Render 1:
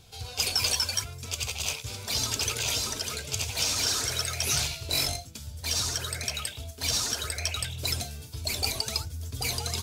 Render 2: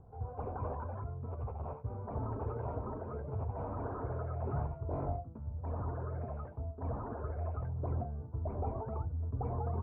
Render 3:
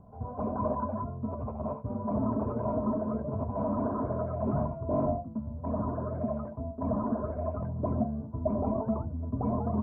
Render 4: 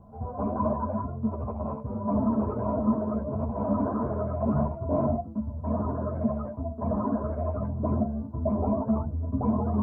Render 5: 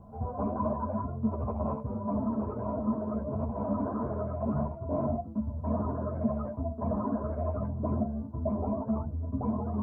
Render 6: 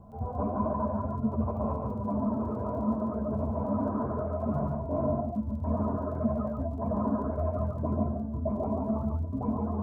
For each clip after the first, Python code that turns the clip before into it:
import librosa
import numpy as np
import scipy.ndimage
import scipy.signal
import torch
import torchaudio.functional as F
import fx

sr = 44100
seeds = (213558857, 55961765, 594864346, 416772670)

y1 = scipy.signal.sosfilt(scipy.signal.butter(6, 1100.0, 'lowpass', fs=sr, output='sos'), x)
y2 = fx.dynamic_eq(y1, sr, hz=280.0, q=0.8, threshold_db=-51.0, ratio=4.0, max_db=6)
y2 = fx.small_body(y2, sr, hz=(220.0, 620.0, 1000.0), ring_ms=50, db=16)
y2 = F.gain(torch.from_numpy(y2), -1.5).numpy()
y3 = fx.ensemble(y2, sr)
y3 = F.gain(torch.from_numpy(y3), 6.0).numpy()
y4 = fx.rider(y3, sr, range_db=5, speed_s=0.5)
y4 = F.gain(torch.from_numpy(y4), -3.5).numpy()
y5 = fx.dmg_crackle(y4, sr, seeds[0], per_s=18.0, level_db=-51.0)
y5 = y5 + 10.0 ** (-3.5 / 20.0) * np.pad(y5, (int(142 * sr / 1000.0), 0))[:len(y5)]